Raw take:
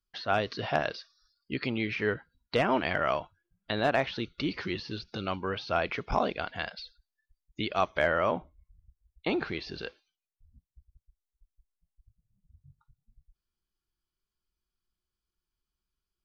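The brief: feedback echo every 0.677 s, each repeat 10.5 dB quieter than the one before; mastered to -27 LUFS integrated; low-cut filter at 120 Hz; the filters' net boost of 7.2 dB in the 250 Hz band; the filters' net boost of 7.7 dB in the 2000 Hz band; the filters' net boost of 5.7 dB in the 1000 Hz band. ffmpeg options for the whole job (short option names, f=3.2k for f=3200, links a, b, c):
-af "highpass=120,equalizer=f=250:t=o:g=9,equalizer=f=1k:t=o:g=5,equalizer=f=2k:t=o:g=8,aecho=1:1:677|1354|2031:0.299|0.0896|0.0269,volume=-1dB"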